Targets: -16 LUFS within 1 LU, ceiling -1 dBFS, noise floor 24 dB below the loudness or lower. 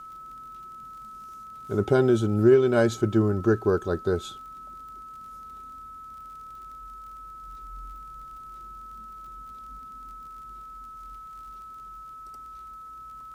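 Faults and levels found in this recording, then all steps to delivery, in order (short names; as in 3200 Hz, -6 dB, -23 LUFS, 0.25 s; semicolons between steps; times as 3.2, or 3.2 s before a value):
ticks 39/s; steady tone 1300 Hz; tone level -40 dBFS; loudness -23.0 LUFS; peak -8.5 dBFS; loudness target -16.0 LUFS
-> de-click; notch 1300 Hz, Q 30; gain +7 dB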